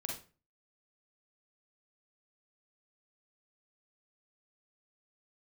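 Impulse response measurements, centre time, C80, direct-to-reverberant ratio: 34 ms, 11.0 dB, -1.0 dB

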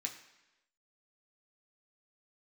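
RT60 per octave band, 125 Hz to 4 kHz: 0.80, 0.95, 1.0, 1.0, 1.0, 1.0 s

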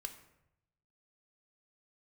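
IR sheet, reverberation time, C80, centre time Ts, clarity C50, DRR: 0.80 s, 13.0 dB, 12 ms, 10.5 dB, 6.5 dB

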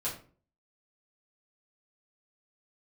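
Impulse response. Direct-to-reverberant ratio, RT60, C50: -8.0 dB, 0.40 s, 7.5 dB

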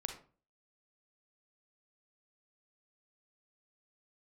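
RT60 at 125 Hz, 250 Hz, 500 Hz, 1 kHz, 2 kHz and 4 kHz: 0.45, 0.50, 0.40, 0.35, 0.30, 0.25 s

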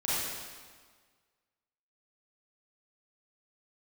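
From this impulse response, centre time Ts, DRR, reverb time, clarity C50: 0.129 s, -10.0 dB, 1.6 s, -5.0 dB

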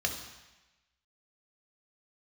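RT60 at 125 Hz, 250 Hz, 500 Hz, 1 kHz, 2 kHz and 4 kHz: 1.0, 1.0, 1.0, 1.1, 1.2, 1.1 s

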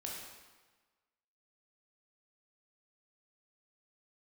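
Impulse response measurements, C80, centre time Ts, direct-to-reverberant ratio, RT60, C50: 3.0 dB, 73 ms, -3.0 dB, 1.3 s, 1.0 dB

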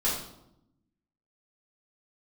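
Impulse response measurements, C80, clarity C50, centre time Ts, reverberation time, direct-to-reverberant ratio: 6.5 dB, 3.0 dB, 45 ms, 0.80 s, -8.0 dB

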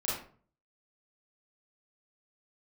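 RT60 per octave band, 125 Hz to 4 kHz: 0.65, 0.55, 0.50, 0.45, 0.35, 0.30 s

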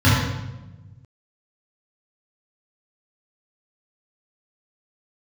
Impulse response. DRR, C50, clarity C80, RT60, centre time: -10.5 dB, -1.0 dB, 2.0 dB, 1.1 s, 79 ms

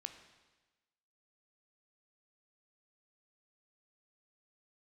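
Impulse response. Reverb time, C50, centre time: 1.2 s, 9.0 dB, 18 ms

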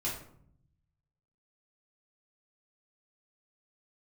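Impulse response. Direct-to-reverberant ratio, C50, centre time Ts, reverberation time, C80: -6.5 dB, 5.0 dB, 38 ms, 0.65 s, 9.0 dB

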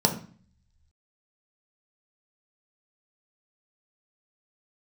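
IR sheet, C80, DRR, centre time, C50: 15.0 dB, 2.0 dB, 14 ms, 10.5 dB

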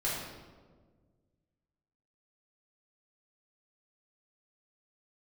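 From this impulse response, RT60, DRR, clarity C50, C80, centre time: 1.5 s, -8.5 dB, 0.0 dB, 2.5 dB, 79 ms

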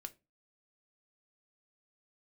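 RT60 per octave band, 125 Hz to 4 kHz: 0.40, 0.35, 0.30, 0.25, 0.20, 0.20 s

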